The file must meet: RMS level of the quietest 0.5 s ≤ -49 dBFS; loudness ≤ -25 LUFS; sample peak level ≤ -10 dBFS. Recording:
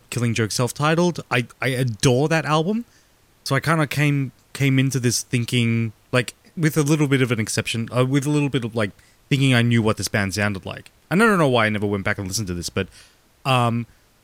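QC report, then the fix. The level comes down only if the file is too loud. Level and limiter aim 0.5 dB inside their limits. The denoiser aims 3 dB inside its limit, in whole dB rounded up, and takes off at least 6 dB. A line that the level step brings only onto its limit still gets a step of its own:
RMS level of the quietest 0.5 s -56 dBFS: OK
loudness -21.0 LUFS: fail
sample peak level -6.0 dBFS: fail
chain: gain -4.5 dB

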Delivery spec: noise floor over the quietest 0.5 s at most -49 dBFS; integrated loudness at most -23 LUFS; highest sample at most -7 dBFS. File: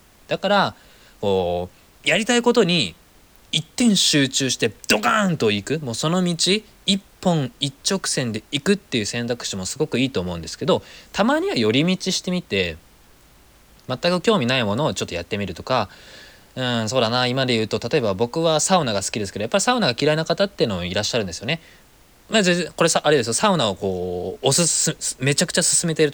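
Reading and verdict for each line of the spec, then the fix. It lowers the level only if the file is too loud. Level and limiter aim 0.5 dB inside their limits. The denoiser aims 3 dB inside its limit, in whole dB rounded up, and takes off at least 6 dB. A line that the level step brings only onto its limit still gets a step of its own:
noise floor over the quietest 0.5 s -52 dBFS: OK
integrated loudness -20.5 LUFS: fail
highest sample -5.5 dBFS: fail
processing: gain -3 dB

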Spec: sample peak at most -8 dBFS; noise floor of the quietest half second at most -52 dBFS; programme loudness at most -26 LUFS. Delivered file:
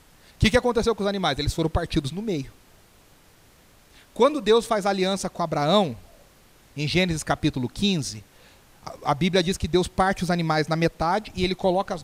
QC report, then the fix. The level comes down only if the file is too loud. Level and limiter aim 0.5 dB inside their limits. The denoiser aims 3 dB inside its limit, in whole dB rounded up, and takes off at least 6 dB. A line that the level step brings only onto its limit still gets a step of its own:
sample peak -7.5 dBFS: fail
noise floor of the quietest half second -55 dBFS: OK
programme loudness -23.5 LUFS: fail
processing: gain -3 dB

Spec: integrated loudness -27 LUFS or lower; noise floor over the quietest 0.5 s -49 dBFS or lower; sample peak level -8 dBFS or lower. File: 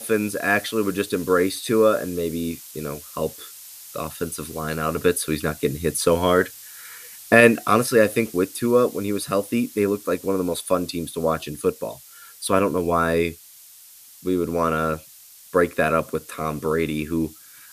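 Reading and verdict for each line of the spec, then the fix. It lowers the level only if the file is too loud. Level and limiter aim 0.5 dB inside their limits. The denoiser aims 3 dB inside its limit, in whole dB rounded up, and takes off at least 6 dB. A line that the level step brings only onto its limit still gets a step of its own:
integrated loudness -22.5 LUFS: fail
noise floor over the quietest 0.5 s -47 dBFS: fail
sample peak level -1.5 dBFS: fail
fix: gain -5 dB; limiter -8.5 dBFS

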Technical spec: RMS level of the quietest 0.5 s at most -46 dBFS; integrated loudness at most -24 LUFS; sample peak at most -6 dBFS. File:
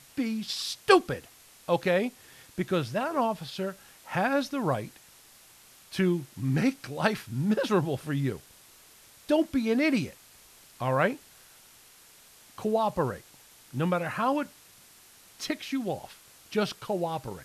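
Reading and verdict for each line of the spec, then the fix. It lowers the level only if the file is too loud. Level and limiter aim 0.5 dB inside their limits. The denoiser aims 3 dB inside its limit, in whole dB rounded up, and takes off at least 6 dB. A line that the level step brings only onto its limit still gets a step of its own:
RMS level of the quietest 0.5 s -55 dBFS: OK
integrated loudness -29.0 LUFS: OK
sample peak -5.0 dBFS: fail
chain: limiter -6.5 dBFS

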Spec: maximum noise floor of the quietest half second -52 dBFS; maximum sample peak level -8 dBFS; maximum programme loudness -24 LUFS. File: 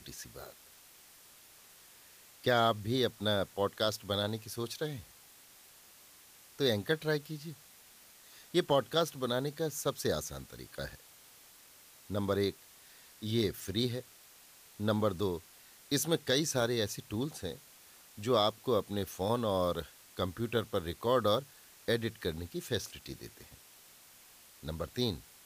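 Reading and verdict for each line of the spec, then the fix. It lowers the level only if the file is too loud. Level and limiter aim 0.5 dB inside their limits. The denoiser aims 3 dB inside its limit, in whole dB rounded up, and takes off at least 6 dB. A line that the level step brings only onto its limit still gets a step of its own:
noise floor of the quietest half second -58 dBFS: OK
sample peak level -16.0 dBFS: OK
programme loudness -33.5 LUFS: OK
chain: none

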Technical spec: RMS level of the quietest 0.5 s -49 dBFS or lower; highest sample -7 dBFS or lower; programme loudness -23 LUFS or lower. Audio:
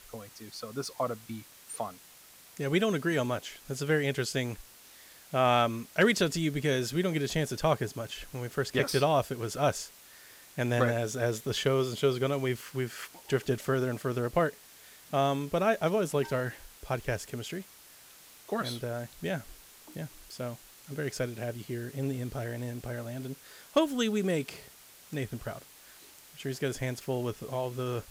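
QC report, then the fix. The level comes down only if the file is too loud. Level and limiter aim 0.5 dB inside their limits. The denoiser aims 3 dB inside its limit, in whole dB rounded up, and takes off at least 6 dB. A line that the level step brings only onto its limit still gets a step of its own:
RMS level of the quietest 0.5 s -55 dBFS: OK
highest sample -13.5 dBFS: OK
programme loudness -31.5 LUFS: OK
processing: none

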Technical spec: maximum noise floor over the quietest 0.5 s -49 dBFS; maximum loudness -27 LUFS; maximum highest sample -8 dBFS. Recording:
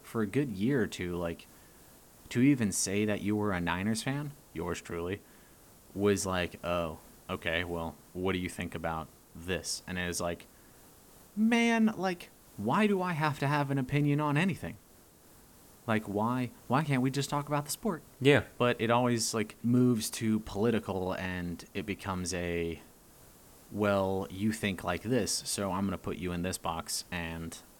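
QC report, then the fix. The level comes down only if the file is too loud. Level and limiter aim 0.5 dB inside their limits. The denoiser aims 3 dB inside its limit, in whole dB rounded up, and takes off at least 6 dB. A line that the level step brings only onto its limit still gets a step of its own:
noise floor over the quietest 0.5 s -59 dBFS: OK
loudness -31.5 LUFS: OK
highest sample -11.5 dBFS: OK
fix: none

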